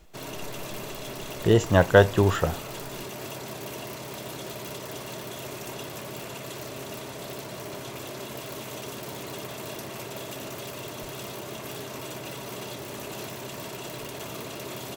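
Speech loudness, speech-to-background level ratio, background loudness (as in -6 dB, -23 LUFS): -21.5 LUFS, 15.5 dB, -37.0 LUFS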